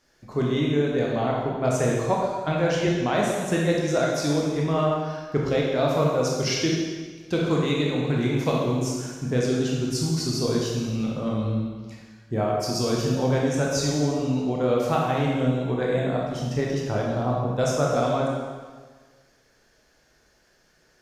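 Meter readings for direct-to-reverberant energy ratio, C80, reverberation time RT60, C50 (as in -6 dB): -3.5 dB, 2.0 dB, 1.5 s, -0.5 dB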